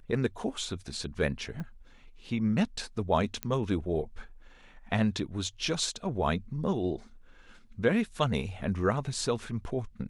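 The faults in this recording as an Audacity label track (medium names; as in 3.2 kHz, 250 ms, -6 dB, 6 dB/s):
1.600000	1.600000	pop -27 dBFS
3.430000	3.430000	pop -15 dBFS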